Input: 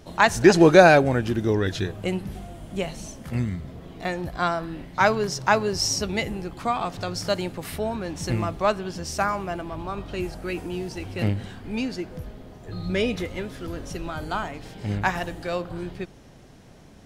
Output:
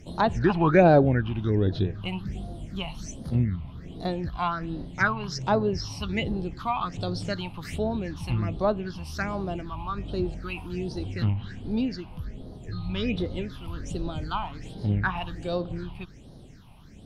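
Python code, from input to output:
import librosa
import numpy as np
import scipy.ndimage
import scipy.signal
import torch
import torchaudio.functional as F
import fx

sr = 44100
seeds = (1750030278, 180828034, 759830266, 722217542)

y = fx.phaser_stages(x, sr, stages=6, low_hz=430.0, high_hz=2200.0, hz=1.3, feedback_pct=50)
y = fx.env_lowpass_down(y, sr, base_hz=2000.0, full_db=-20.0)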